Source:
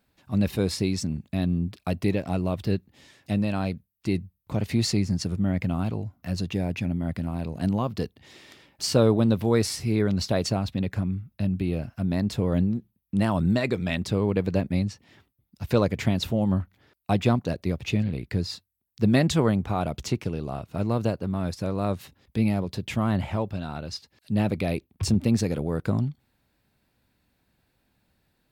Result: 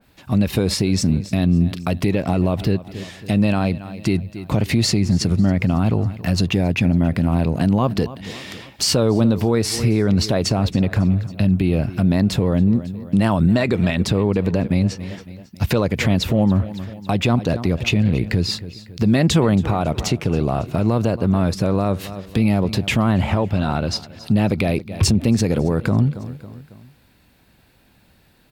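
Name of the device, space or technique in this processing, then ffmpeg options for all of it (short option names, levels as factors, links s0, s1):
mastering chain: -af "equalizer=f=2800:t=o:w=0.77:g=2,aecho=1:1:275|550|825:0.0944|0.0444|0.0209,acompressor=threshold=0.0447:ratio=2,alimiter=level_in=10.6:limit=0.891:release=50:level=0:latency=1,adynamicequalizer=threshold=0.0447:dfrequency=2100:dqfactor=0.7:tfrequency=2100:tqfactor=0.7:attack=5:release=100:ratio=0.375:range=2:mode=cutabove:tftype=highshelf,volume=0.473"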